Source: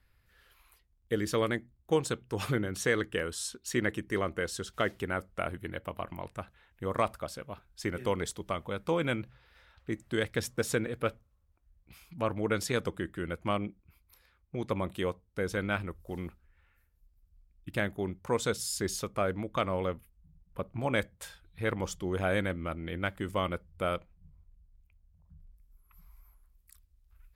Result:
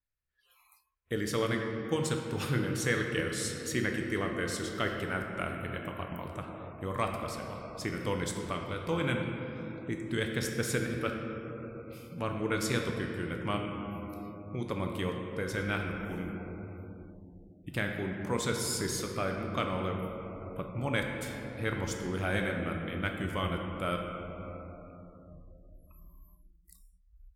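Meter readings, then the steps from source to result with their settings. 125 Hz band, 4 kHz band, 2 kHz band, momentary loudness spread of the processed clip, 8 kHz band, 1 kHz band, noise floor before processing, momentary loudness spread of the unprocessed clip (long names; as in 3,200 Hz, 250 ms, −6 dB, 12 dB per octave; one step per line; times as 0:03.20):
+2.0 dB, +1.0 dB, +1.0 dB, 12 LU, +1.0 dB, −1.0 dB, −69 dBFS, 11 LU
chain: rectangular room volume 150 cubic metres, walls hard, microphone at 0.35 metres
dynamic equaliser 610 Hz, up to −6 dB, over −41 dBFS, Q 0.78
noise reduction from a noise print of the clip's start 25 dB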